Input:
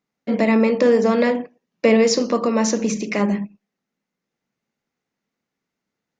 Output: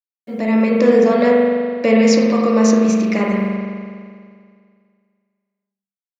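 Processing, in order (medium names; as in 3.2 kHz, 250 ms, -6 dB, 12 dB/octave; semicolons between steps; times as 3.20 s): fade-in on the opening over 0.74 s; bit crusher 10-bit; spring tank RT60 2.1 s, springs 41 ms, chirp 50 ms, DRR -1.5 dB; trim -1 dB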